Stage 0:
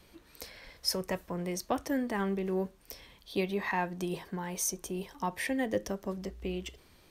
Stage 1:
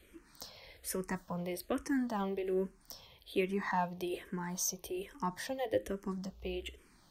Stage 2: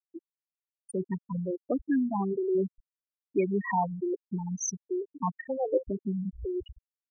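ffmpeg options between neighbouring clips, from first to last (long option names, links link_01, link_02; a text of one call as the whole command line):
ffmpeg -i in.wav -filter_complex "[0:a]asplit=2[link_01][link_02];[link_02]afreqshift=-1.2[link_03];[link_01][link_03]amix=inputs=2:normalize=1" out.wav
ffmpeg -i in.wav -af "aeval=exprs='val(0)+0.5*0.0141*sgn(val(0))':channel_layout=same,afftfilt=real='re*gte(hypot(re,im),0.1)':imag='im*gte(hypot(re,im),0.1)':win_size=1024:overlap=0.75,volume=5dB" out.wav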